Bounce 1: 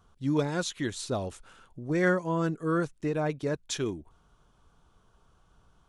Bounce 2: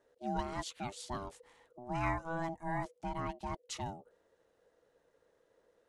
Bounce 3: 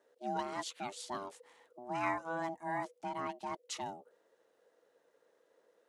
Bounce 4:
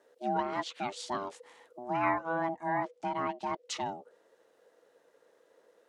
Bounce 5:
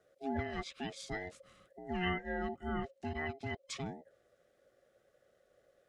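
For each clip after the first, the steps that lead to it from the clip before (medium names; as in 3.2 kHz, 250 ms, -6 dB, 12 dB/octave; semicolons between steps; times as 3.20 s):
ring modulator 490 Hz; trim -6.5 dB
high-pass 270 Hz 12 dB/octave; trim +1 dB
low-pass that closes with the level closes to 2.3 kHz, closed at -33.5 dBFS; trim +6 dB
every band turned upside down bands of 1 kHz; trim -5.5 dB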